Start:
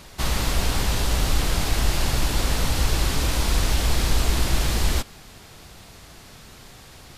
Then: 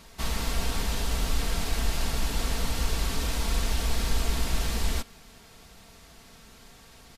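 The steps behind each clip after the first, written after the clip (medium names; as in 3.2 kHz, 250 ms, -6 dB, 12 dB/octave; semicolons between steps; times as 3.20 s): comb 4.4 ms, depth 43%; trim -7 dB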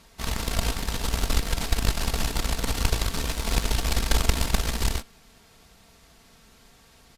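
Chebyshev shaper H 3 -12 dB, 6 -29 dB, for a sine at -12.5 dBFS; trim +9 dB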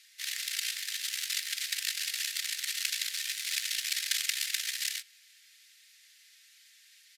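elliptic high-pass 1.8 kHz, stop band 60 dB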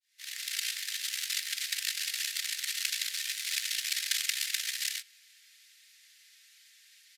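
fade-in on the opening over 0.55 s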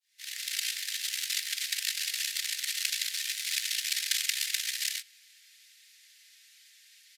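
high-pass 1.4 kHz 12 dB/octave; trim +1.5 dB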